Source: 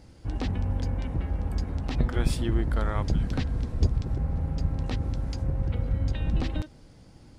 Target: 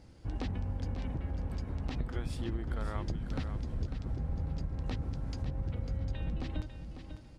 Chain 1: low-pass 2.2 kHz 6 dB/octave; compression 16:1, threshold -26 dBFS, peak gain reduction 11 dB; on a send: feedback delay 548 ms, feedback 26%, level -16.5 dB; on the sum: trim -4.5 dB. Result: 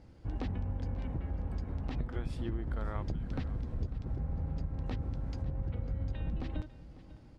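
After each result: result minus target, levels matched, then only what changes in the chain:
8 kHz band -8.0 dB; echo-to-direct -7.5 dB
change: low-pass 8.2 kHz 6 dB/octave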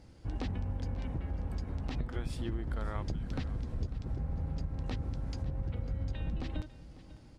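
echo-to-direct -7.5 dB
change: feedback delay 548 ms, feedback 26%, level -9 dB

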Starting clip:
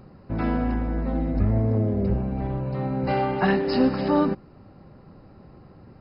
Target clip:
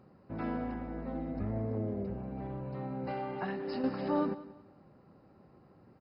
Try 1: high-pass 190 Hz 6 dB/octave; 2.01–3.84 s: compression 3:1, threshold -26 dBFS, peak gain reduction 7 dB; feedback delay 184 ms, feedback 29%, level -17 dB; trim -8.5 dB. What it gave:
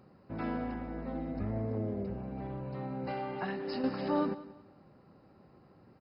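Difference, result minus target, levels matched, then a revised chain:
4 kHz band +3.5 dB
high-pass 190 Hz 6 dB/octave; treble shelf 2.7 kHz -6 dB; 2.01–3.84 s: compression 3:1, threshold -26 dBFS, peak gain reduction 7 dB; feedback delay 184 ms, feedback 29%, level -17 dB; trim -8.5 dB

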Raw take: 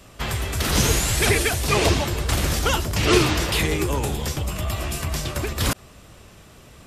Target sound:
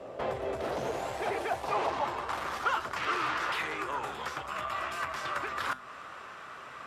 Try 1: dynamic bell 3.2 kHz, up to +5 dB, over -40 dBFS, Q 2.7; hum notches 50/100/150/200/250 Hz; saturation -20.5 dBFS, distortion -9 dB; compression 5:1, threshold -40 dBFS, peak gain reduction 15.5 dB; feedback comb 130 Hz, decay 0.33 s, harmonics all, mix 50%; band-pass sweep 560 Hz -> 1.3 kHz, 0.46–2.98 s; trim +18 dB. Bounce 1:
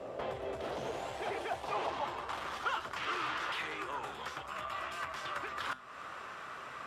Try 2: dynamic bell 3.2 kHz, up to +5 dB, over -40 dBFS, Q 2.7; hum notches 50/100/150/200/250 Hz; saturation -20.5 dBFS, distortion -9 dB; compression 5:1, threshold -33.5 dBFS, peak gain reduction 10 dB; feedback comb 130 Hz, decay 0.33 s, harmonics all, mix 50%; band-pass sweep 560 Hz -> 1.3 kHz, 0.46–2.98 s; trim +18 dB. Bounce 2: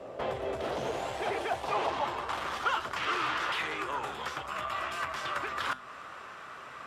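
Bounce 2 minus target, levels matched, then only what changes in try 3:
4 kHz band +2.5 dB
change: dynamic bell 12 kHz, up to +5 dB, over -40 dBFS, Q 2.7

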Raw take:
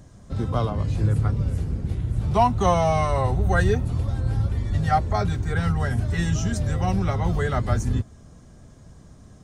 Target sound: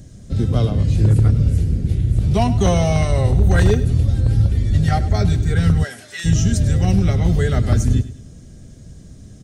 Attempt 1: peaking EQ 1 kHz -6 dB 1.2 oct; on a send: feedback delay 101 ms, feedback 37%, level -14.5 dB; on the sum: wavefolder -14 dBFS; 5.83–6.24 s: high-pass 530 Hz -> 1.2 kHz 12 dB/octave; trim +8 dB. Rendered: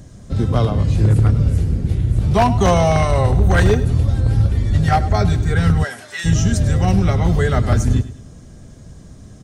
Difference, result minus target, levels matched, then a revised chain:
1 kHz band +6.0 dB
peaking EQ 1 kHz -16.5 dB 1.2 oct; on a send: feedback delay 101 ms, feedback 37%, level -14.5 dB; on the sum: wavefolder -14 dBFS; 5.83–6.24 s: high-pass 530 Hz -> 1.2 kHz 12 dB/octave; trim +8 dB

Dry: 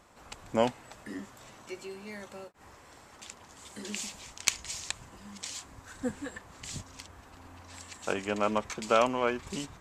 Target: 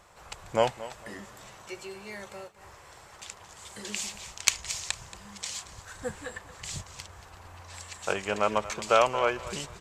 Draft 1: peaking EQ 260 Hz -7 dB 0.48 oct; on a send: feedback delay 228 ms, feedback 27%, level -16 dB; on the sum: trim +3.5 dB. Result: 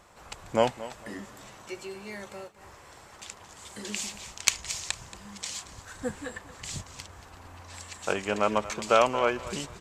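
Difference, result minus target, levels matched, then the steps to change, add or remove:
250 Hz band +4.0 dB
change: peaking EQ 260 Hz -16.5 dB 0.48 oct

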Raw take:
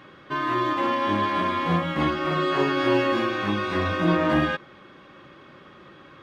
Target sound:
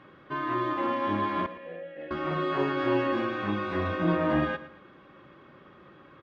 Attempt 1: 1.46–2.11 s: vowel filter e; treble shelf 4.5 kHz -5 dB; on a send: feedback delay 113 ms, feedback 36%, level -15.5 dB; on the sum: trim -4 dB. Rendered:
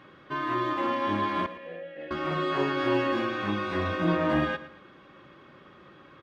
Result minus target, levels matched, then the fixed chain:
8 kHz band +7.5 dB
1.46–2.11 s: vowel filter e; treble shelf 4.5 kHz -17 dB; on a send: feedback delay 113 ms, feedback 36%, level -15.5 dB; on the sum: trim -4 dB

